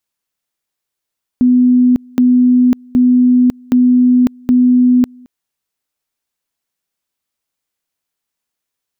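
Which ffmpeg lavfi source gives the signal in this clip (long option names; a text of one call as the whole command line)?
ffmpeg -f lavfi -i "aevalsrc='pow(10,(-6-29.5*gte(mod(t,0.77),0.55))/20)*sin(2*PI*249*t)':duration=3.85:sample_rate=44100" out.wav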